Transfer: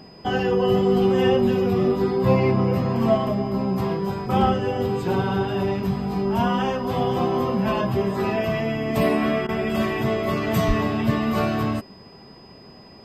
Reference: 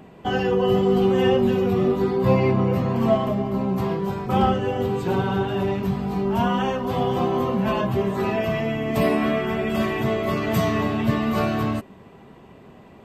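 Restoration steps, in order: band-stop 5 kHz, Q 30; de-plosive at 10.67 s; interpolate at 9.47 s, 17 ms

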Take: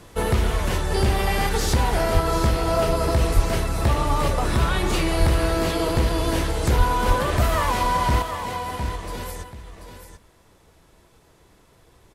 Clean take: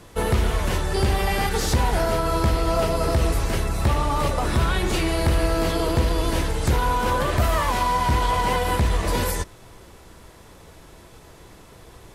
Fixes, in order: de-plosive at 2.13/3.35/5.19/6.77/7.07 s; inverse comb 736 ms -9.5 dB; gain correction +9.5 dB, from 8.22 s

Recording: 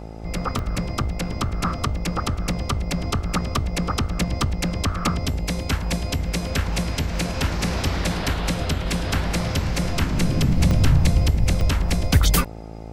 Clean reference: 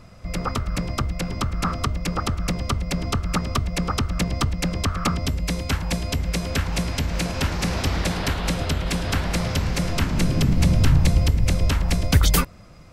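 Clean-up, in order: de-hum 54.9 Hz, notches 16; interpolate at 0.59/10.71/11.61 s, 1.2 ms

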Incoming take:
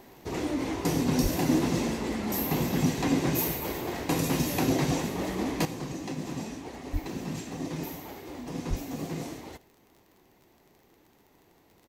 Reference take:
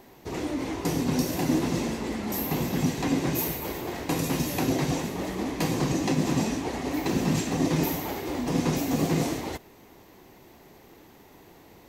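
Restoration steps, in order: de-click; 1.22–1.34 s: high-pass 140 Hz 24 dB/octave; 6.92–7.04 s: high-pass 140 Hz 24 dB/octave; 8.69–8.81 s: high-pass 140 Hz 24 dB/octave; inverse comb 81 ms -22.5 dB; trim 0 dB, from 5.65 s +10 dB

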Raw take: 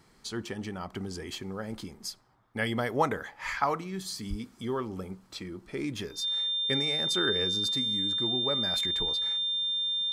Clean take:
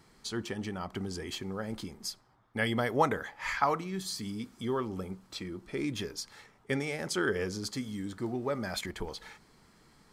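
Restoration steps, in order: band-stop 3.6 kHz, Q 30; 4.29–4.41 s: high-pass 140 Hz 24 dB/octave

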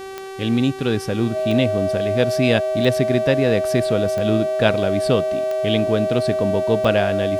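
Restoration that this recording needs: de-click; de-hum 385.3 Hz, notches 34; band-stop 630 Hz, Q 30

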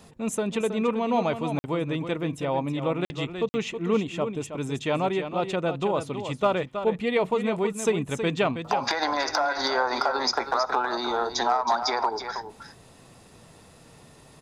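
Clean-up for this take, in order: clip repair -12.5 dBFS; interpolate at 1.59/3.05/3.49 s, 50 ms; inverse comb 321 ms -9 dB

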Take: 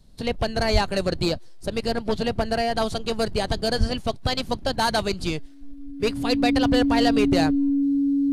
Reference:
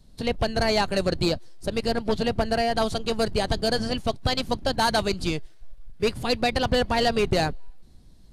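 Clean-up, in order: band-stop 280 Hz, Q 30; 0.72–0.84 s: high-pass 140 Hz 24 dB/octave; 3.79–3.91 s: high-pass 140 Hz 24 dB/octave

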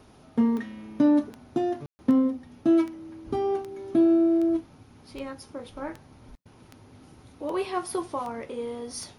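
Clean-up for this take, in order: de-click; room tone fill 1.86–1.99 s

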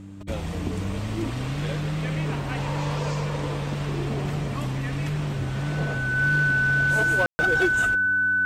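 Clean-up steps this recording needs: clip repair -15.5 dBFS; de-hum 98.1 Hz, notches 3; band-stop 1.5 kHz, Q 30; room tone fill 7.26–7.39 s

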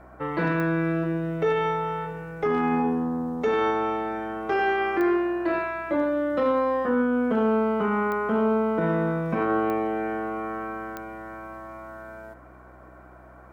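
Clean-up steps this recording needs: de-click; de-hum 62.7 Hz, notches 16

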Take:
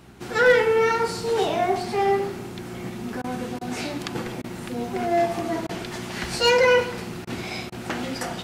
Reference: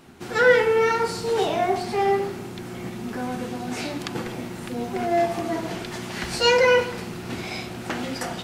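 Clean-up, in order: clip repair -9.5 dBFS; de-hum 63.2 Hz, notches 4; interpolate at 3.22/3.59/4.42/5.67/7.25/7.70 s, 20 ms

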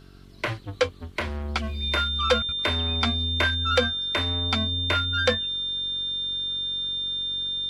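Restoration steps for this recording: clip repair -9 dBFS; de-hum 46.6 Hz, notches 9; band-stop 3.6 kHz, Q 30

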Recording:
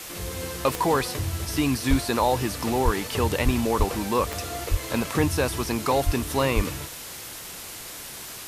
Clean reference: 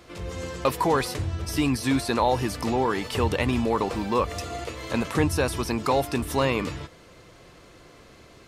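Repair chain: de-click; de-plosive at 1.89/2.84/3.44/3.78/4.70/6.05/6.55 s; noise print and reduce 12 dB

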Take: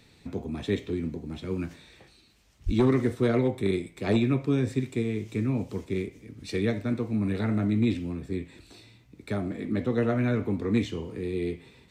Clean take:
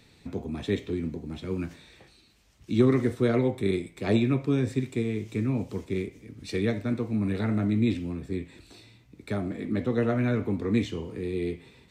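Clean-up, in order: clip repair -15 dBFS; 2.65–2.77 s: high-pass 140 Hz 24 dB/octave

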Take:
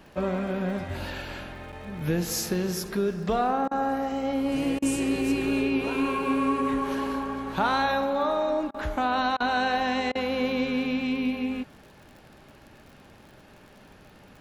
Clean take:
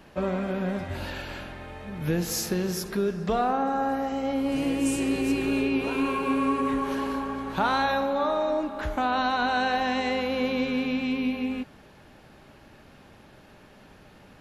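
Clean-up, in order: de-click; interpolate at 1.72 s, 6.5 ms; interpolate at 3.68/4.79/8.71/9.37/10.12 s, 31 ms

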